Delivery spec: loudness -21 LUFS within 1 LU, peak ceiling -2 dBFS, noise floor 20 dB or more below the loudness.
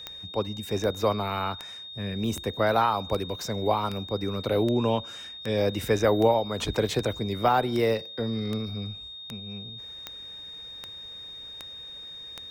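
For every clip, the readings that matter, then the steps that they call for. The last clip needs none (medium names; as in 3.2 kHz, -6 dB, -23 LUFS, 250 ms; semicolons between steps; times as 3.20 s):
clicks found 17; steady tone 3.7 kHz; tone level -39 dBFS; loudness -27.5 LUFS; peak level -10.5 dBFS; loudness target -21.0 LUFS
-> de-click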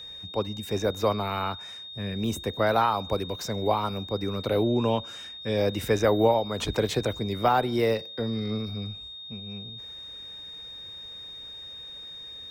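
clicks found 0; steady tone 3.7 kHz; tone level -39 dBFS
-> band-stop 3.7 kHz, Q 30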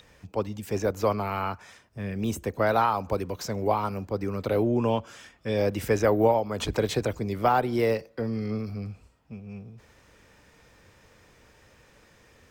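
steady tone not found; loudness -27.5 LUFS; peak level -10.5 dBFS; loudness target -21.0 LUFS
-> trim +6.5 dB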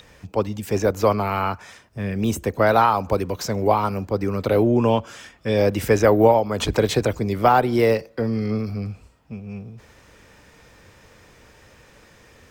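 loudness -21.0 LUFS; peak level -4.0 dBFS; noise floor -52 dBFS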